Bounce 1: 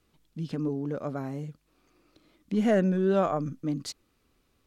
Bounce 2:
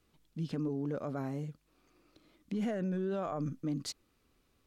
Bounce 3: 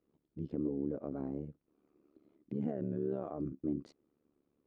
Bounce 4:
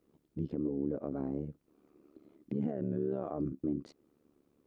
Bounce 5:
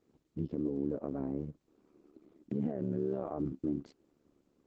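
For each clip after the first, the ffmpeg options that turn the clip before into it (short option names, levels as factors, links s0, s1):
-af "alimiter=level_in=1.12:limit=0.0631:level=0:latency=1:release=38,volume=0.891,volume=0.75"
-af "bandpass=f=320:t=q:w=1.2:csg=0,tremolo=f=72:d=0.889,volume=1.68"
-filter_complex "[0:a]asplit=2[s0][s1];[s1]acompressor=threshold=0.00631:ratio=6,volume=0.708[s2];[s0][s2]amix=inputs=2:normalize=0,alimiter=level_in=1.33:limit=0.0631:level=0:latency=1:release=403,volume=0.75,volume=1.33"
-ar 48000 -c:a libopus -b:a 12k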